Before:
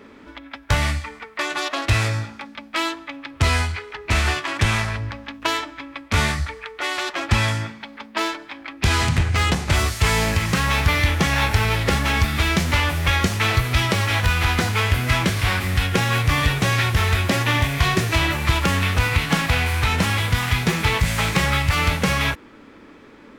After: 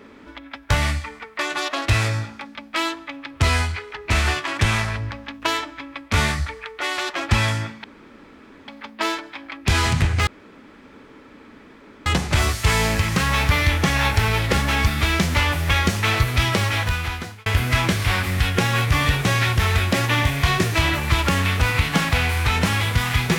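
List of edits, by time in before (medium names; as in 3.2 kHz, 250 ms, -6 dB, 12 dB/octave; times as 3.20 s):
7.84 s: insert room tone 0.84 s
9.43 s: insert room tone 1.79 s
14.00–14.83 s: fade out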